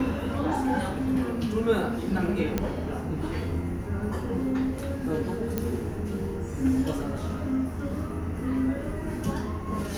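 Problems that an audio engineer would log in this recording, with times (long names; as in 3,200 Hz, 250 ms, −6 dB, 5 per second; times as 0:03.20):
0:02.58: click −12 dBFS
0:05.58: click −13 dBFS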